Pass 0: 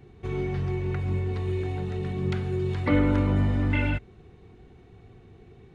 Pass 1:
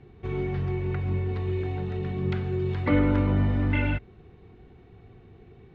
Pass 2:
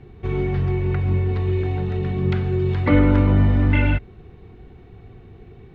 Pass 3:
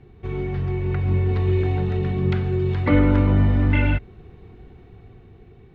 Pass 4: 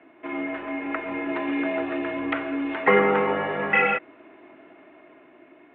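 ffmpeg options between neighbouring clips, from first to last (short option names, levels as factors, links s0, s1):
-af "lowpass=3800"
-af "lowshelf=f=61:g=7,volume=1.88"
-af "dynaudnorm=f=220:g=11:m=3.76,volume=0.596"
-af "highpass=f=480:t=q:w=0.5412,highpass=f=480:t=q:w=1.307,lowpass=f=2900:t=q:w=0.5176,lowpass=f=2900:t=q:w=0.7071,lowpass=f=2900:t=q:w=1.932,afreqshift=-91,volume=2.51"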